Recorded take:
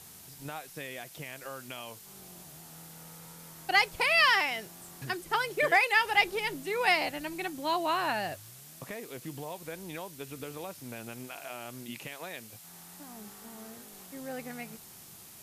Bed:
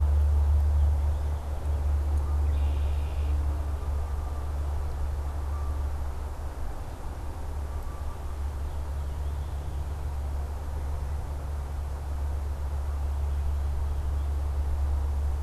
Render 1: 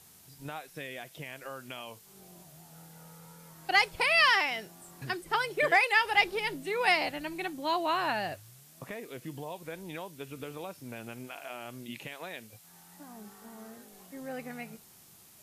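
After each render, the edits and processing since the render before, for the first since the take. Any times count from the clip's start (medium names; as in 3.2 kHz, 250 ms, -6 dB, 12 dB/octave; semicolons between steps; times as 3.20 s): noise print and reduce 6 dB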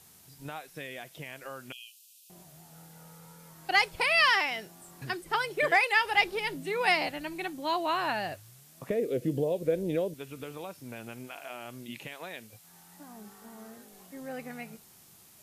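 1.72–2.30 s: brick-wall FIR high-pass 2.4 kHz; 6.56–7.07 s: resonant low shelf 110 Hz -9 dB, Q 3; 8.90–10.14 s: resonant low shelf 690 Hz +9.5 dB, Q 3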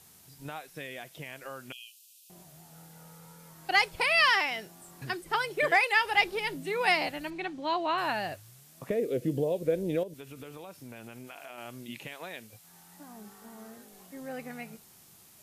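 7.30–7.98 s: low-pass 4.6 kHz; 10.03–11.58 s: compression 3:1, threshold -41 dBFS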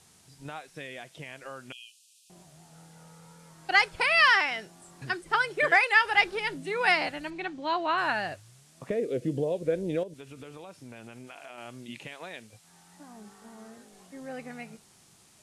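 low-pass 9.8 kHz 24 dB/octave; dynamic bell 1.5 kHz, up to +7 dB, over -43 dBFS, Q 2.2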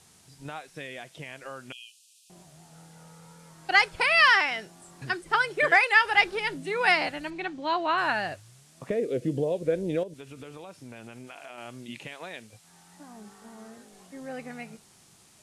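trim +1.5 dB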